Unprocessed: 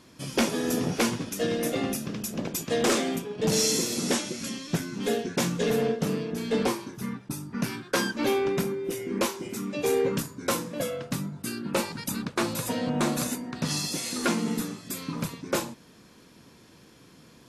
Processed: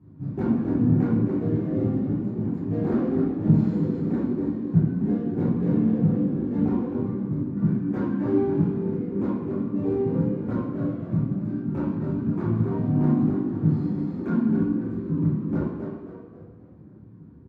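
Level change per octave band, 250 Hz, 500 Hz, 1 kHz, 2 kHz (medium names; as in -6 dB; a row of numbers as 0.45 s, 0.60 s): +7.5 dB, -1.5 dB, -6.5 dB, under -10 dB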